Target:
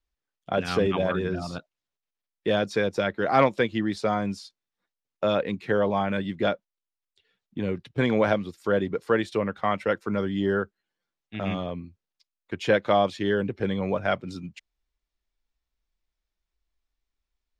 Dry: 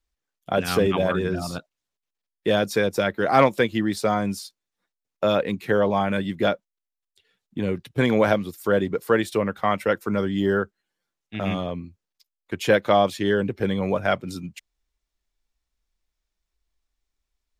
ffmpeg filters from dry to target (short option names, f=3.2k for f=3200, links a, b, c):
-af "lowpass=5.5k,volume=-3dB"